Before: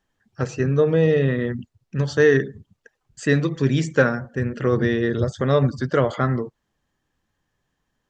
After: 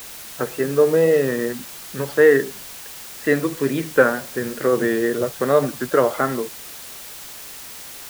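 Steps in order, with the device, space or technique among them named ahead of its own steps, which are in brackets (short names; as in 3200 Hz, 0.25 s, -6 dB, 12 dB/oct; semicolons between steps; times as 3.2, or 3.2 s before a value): wax cylinder (BPF 310–2000 Hz; wow and flutter; white noise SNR 16 dB); gain +4 dB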